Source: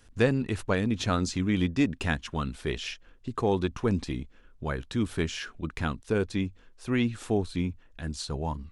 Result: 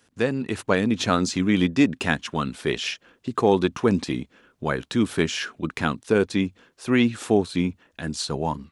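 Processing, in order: de-esser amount 65%; HPF 160 Hz 12 dB/oct; AGC gain up to 8 dB

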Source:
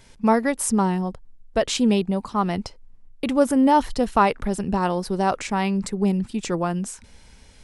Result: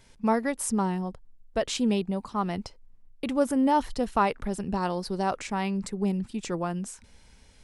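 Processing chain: 4.75–5.23 bell 4500 Hz +8.5 dB 0.27 oct; gain -6 dB

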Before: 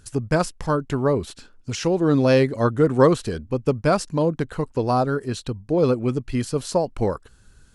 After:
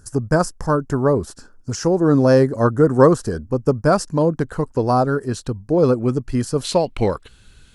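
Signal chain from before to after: band shelf 2900 Hz -14.5 dB 1.2 oct, from 3.9 s -8 dB, from 6.63 s +9 dB; gain +3.5 dB

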